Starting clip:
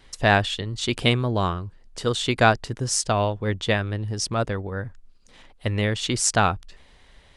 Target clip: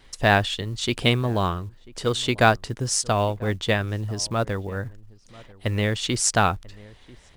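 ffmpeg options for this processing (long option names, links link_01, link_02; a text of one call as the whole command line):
ffmpeg -i in.wav -filter_complex "[0:a]acrusher=bits=8:mode=log:mix=0:aa=0.000001,asplit=2[link_01][link_02];[link_02]adelay=991.3,volume=-22dB,highshelf=frequency=4000:gain=-22.3[link_03];[link_01][link_03]amix=inputs=2:normalize=0" out.wav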